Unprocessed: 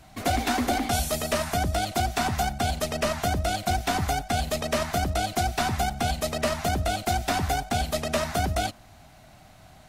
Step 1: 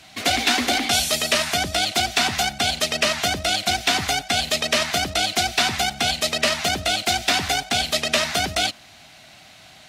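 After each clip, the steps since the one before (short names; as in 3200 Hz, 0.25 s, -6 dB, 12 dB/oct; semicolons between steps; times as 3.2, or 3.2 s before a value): weighting filter D; gain +2 dB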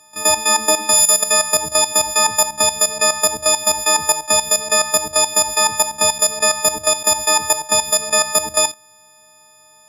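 frequency quantiser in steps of 6 st; level quantiser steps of 12 dB; graphic EQ 500/1000/2000/4000/8000 Hz +4/+9/-5/-9/+7 dB; gain -1 dB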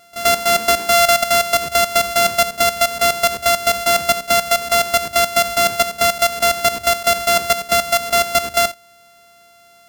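sample sorter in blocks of 64 samples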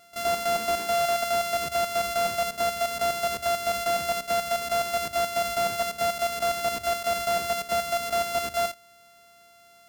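hard clip -15.5 dBFS, distortion -7 dB; gain -6 dB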